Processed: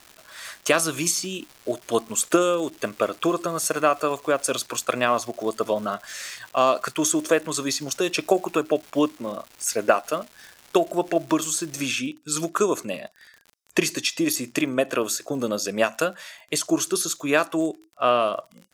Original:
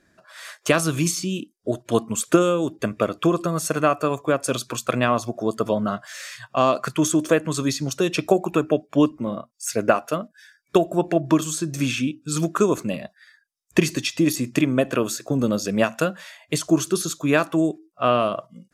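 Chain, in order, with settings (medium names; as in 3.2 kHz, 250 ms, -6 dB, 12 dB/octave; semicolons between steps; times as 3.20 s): tone controls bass -13 dB, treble +3 dB; crackle 440 per s -35 dBFS, from 11.81 s 41 per s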